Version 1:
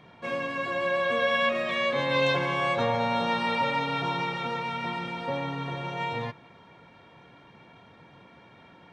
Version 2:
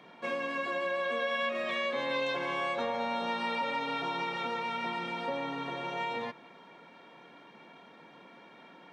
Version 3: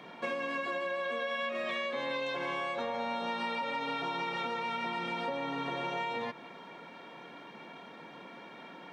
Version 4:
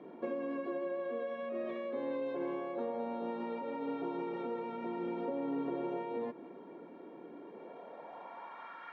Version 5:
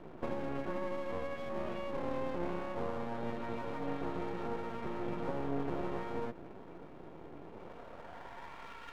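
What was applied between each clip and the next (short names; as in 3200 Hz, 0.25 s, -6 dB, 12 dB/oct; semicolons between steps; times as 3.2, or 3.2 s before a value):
compressor 3:1, threshold -31 dBFS, peak gain reduction 8.5 dB; HPF 200 Hz 24 dB/oct
compressor, threshold -37 dBFS, peak gain reduction 9 dB; gain +5 dB
band-pass sweep 340 Hz -> 1400 Hz, 7.35–8.86; gain +7 dB
octaver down 1 oct, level -3 dB; half-wave rectifier; gain +3.5 dB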